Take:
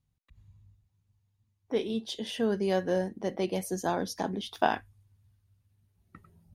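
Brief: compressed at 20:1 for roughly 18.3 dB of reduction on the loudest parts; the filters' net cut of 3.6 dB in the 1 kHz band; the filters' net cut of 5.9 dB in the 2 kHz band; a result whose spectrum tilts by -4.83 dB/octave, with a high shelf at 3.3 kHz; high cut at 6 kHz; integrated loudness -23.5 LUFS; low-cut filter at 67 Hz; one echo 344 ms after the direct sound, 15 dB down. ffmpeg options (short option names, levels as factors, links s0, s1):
-af "highpass=67,lowpass=6000,equalizer=f=1000:t=o:g=-4,equalizer=f=2000:t=o:g=-4,highshelf=f=3300:g=-8.5,acompressor=threshold=0.01:ratio=20,aecho=1:1:344:0.178,volume=13.3"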